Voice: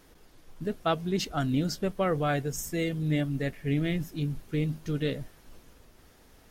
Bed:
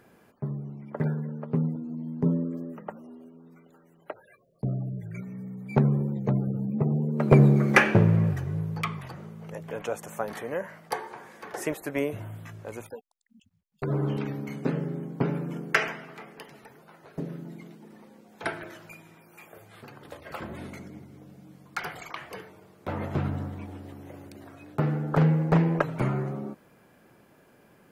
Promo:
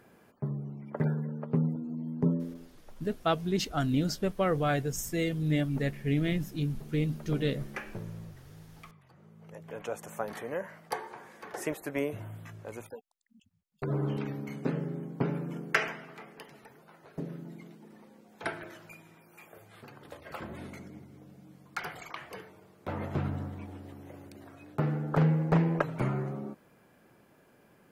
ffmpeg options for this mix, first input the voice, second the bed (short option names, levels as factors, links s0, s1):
-filter_complex "[0:a]adelay=2400,volume=0.944[s0];[1:a]volume=6.68,afade=t=out:st=2.21:d=0.48:silence=0.1,afade=t=in:st=9.06:d=1.02:silence=0.125893[s1];[s0][s1]amix=inputs=2:normalize=0"